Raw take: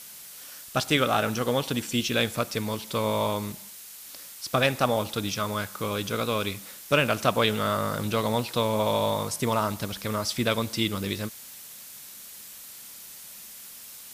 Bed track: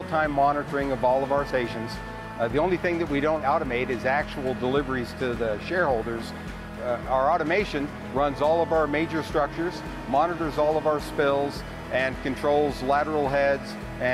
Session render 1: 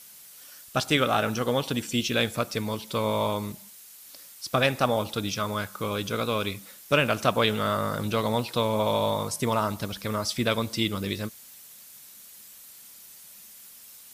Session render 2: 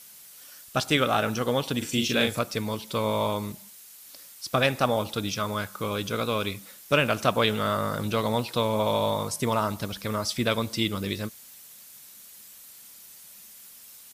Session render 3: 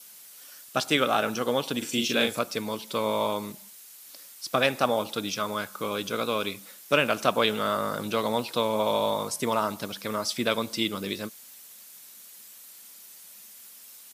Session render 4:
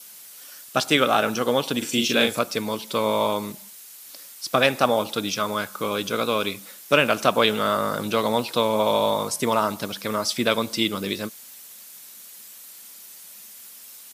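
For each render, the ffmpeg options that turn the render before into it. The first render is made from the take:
-af "afftdn=nr=6:nf=-45"
-filter_complex "[0:a]asplit=3[s0][s1][s2];[s0]afade=t=out:st=1.81:d=0.02[s3];[s1]asplit=2[s4][s5];[s5]adelay=39,volume=0.631[s6];[s4][s6]amix=inputs=2:normalize=0,afade=t=in:st=1.81:d=0.02,afade=t=out:st=2.38:d=0.02[s7];[s2]afade=t=in:st=2.38:d=0.02[s8];[s3][s7][s8]amix=inputs=3:normalize=0"
-af "highpass=200,adynamicequalizer=threshold=0.00282:dfrequency=1900:dqfactor=7.1:tfrequency=1900:tqfactor=7.1:attack=5:release=100:ratio=0.375:range=2:mode=cutabove:tftype=bell"
-af "volume=1.68,alimiter=limit=0.794:level=0:latency=1"

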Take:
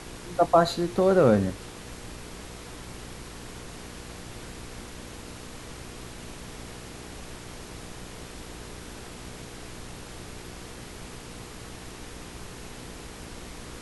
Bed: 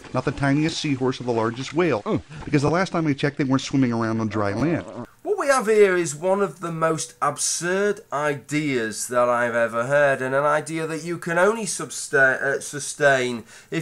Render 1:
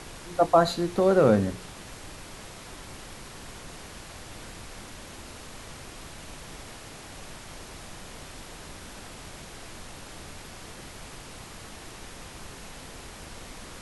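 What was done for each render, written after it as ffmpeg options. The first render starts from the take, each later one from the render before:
-af "bandreject=f=60:t=h:w=4,bandreject=f=120:t=h:w=4,bandreject=f=180:t=h:w=4,bandreject=f=240:t=h:w=4,bandreject=f=300:t=h:w=4,bandreject=f=360:t=h:w=4,bandreject=f=420:t=h:w=4,bandreject=f=480:t=h:w=4"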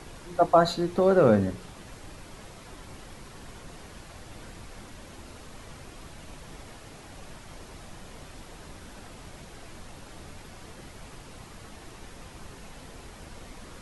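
-af "afftdn=nr=6:nf=-44"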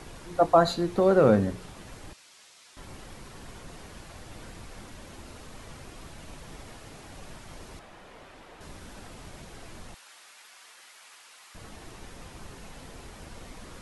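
-filter_complex "[0:a]asettb=1/sr,asplit=3[s0][s1][s2];[s0]atrim=end=2.134[s3];[s1]atrim=start=2.13:end=2.77,asetpts=PTS-STARTPTS,afade=t=in:d=0.004:c=qsin,afade=t=out:st=0.636:d=0.004:c=qsin,bandpass=f=5500:t=q:w=0.69[s4];[s2]atrim=start=2.766[s5];[s3][s4]acrossfade=d=0.004:c1=hsin:c2=qsin[s6];[s6][s5]acrossfade=d=0.004:c1=qsin:c2=hsin,asettb=1/sr,asplit=3[s7][s8][s9];[s7]atrim=end=7.794[s10];[s8]atrim=start=7.79:end=8.61,asetpts=PTS-STARTPTS,afade=t=in:d=0.004:c=qsin,afade=t=out:st=0.816:d=0.004:c=qsin,bass=f=250:g=-11,treble=f=4000:g=-11[s11];[s9]atrim=start=8.606[s12];[s10][s11]acrossfade=d=0.004:c1=hsin:c2=qsin[s13];[s13][s12]acrossfade=d=0.004:c1=qsin:c2=hsin,asettb=1/sr,asplit=3[s14][s15][s16];[s14]atrim=end=9.944[s17];[s15]atrim=start=9.94:end=11.55,asetpts=PTS-STARTPTS,afade=t=in:d=0.004:c=qsin,afade=t=out:st=1.606:d=0.004:c=qsin,highpass=1300[s18];[s16]atrim=start=11.546[s19];[s17][s18]acrossfade=d=0.004:c1=hsin:c2=qsin[s20];[s20][s19]acrossfade=d=0.004:c1=qsin:c2=hsin"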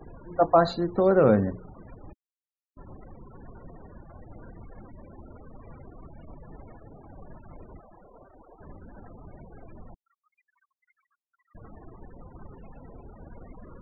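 -af "aemphasis=mode=reproduction:type=50fm,afftfilt=real='re*gte(hypot(re,im),0.00891)':imag='im*gte(hypot(re,im),0.00891)':win_size=1024:overlap=0.75"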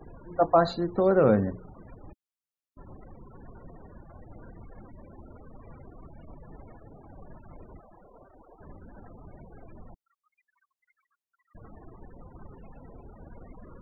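-af "volume=0.841"

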